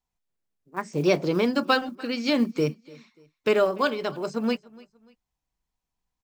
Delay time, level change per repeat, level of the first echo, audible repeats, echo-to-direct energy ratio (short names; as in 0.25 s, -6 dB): 0.293 s, -9.0 dB, -23.0 dB, 2, -22.5 dB